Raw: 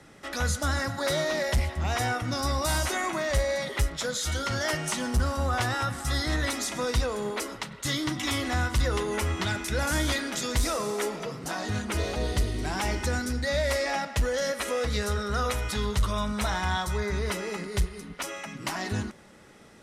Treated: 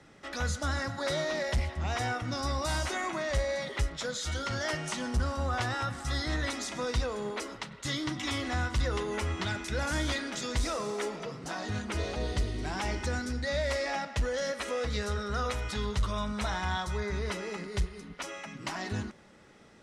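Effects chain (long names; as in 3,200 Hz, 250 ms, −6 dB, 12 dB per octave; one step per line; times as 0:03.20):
low-pass filter 7,300 Hz 12 dB per octave
level −4 dB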